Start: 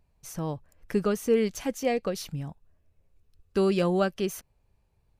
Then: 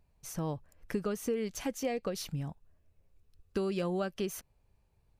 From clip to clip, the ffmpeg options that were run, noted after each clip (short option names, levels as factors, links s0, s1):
-af "acompressor=threshold=0.0398:ratio=6,volume=0.841"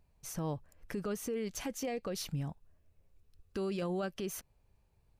-af "alimiter=level_in=1.68:limit=0.0631:level=0:latency=1:release=14,volume=0.596"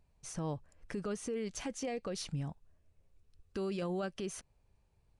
-af "aresample=22050,aresample=44100,volume=0.891"